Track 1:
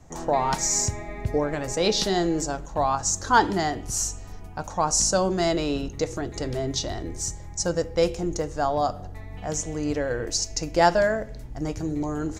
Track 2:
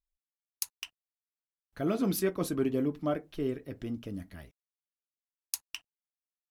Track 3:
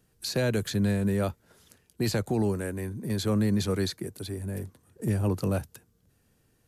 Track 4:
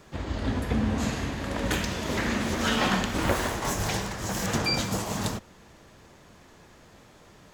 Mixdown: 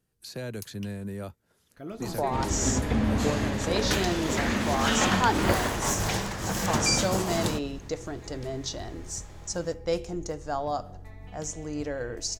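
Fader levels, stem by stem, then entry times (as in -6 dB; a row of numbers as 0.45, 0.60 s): -6.0, -9.0, -9.5, +0.5 dB; 1.90, 0.00, 0.00, 2.20 s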